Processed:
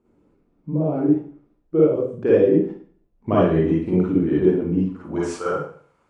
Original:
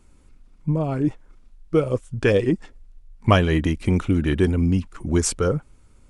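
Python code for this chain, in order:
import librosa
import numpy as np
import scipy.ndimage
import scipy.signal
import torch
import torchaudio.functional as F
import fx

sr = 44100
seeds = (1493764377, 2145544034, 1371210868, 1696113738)

y = fx.filter_sweep_bandpass(x, sr, from_hz=380.0, to_hz=1000.0, start_s=4.8, end_s=5.39, q=1.1)
y = fx.rev_schroeder(y, sr, rt60_s=0.5, comb_ms=38, drr_db=-7.5)
y = F.gain(torch.from_numpy(y), -2.5).numpy()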